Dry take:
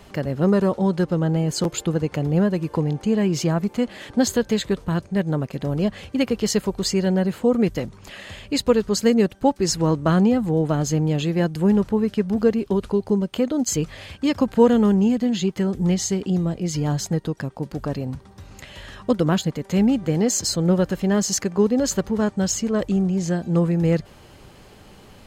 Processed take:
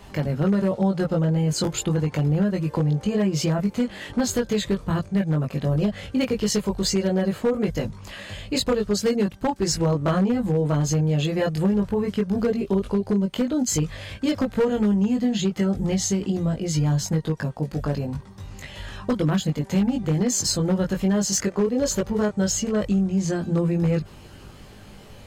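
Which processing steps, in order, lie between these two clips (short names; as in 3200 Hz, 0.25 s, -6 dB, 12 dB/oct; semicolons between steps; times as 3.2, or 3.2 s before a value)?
chorus voices 4, 0.12 Hz, delay 20 ms, depth 1.1 ms; compressor 4:1, threshold -22 dBFS, peak gain reduction 9.5 dB; wavefolder -18 dBFS; gain +4 dB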